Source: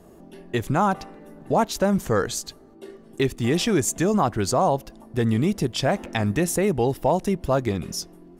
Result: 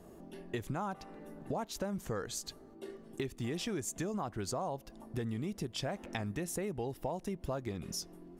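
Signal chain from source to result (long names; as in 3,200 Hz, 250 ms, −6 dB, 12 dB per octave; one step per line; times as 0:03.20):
downward compressor 4 to 1, threshold −31 dBFS, peak gain reduction 13.5 dB
level −5 dB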